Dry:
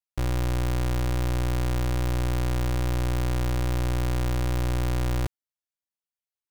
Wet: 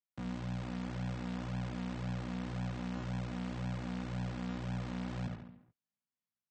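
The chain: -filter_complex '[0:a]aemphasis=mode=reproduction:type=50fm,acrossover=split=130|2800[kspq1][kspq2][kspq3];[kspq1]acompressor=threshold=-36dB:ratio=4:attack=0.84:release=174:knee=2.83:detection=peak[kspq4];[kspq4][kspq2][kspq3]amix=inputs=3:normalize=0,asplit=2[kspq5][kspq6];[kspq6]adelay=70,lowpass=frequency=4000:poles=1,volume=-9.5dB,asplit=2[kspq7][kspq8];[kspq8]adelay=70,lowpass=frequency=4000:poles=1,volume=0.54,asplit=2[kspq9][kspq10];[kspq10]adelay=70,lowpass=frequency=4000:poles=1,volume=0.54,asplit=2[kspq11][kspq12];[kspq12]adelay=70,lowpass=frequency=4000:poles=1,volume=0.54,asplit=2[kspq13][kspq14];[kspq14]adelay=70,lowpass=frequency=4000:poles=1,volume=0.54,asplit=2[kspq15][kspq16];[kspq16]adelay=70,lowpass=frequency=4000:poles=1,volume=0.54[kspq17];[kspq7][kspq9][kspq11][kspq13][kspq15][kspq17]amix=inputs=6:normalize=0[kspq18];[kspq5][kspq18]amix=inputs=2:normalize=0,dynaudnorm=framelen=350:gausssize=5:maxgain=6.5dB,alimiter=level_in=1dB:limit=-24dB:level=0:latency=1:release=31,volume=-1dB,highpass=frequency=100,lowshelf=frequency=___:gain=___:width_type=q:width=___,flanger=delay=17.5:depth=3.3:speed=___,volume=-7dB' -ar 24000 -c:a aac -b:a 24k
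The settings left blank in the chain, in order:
280, 6.5, 3, 1.9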